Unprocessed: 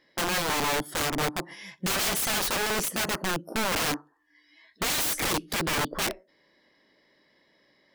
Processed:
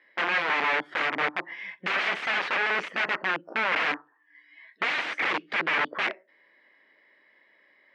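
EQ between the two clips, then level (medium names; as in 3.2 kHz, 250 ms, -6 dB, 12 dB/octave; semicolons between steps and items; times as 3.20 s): Bessel high-pass 290 Hz, order 2; four-pole ladder low-pass 2.6 kHz, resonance 40%; tilt EQ +2 dB/octave; +8.5 dB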